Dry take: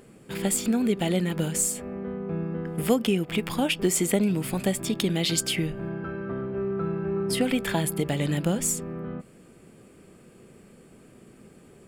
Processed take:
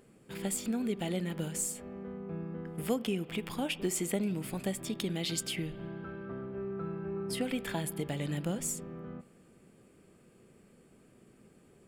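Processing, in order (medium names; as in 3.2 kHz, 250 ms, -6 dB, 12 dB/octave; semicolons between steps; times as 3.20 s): spring tank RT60 2.1 s, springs 41/57 ms, chirp 65 ms, DRR 18 dB; trim -9 dB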